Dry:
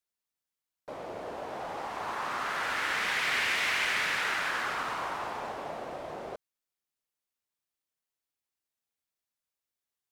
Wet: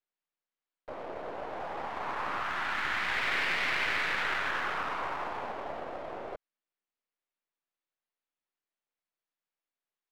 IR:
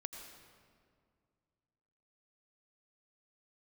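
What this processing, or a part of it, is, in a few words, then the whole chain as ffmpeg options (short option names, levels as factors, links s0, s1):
crystal radio: -filter_complex "[0:a]asettb=1/sr,asplit=3[s0][s1][s2];[s0]atrim=end=2.424[s3];[s1]atrim=start=2.42:end=3.11,asetpts=PTS-STARTPTS,afade=t=in:d=0.004:c=qsin,afade=t=out:st=0.686:d=0.004:c=qsin,equalizer=f=480:t=o:w=0.38:g=-14.5[s4];[s2]atrim=start=3.106[s5];[s3][s4]acrossfade=d=0.004:c1=hsin:c2=qsin[s6];[s6][s5]acrossfade=d=0.004:c1=qsin:c2=hsin,highpass=230,lowpass=2900,aeval=exprs='if(lt(val(0),0),0.447*val(0),val(0))':c=same,volume=1.33"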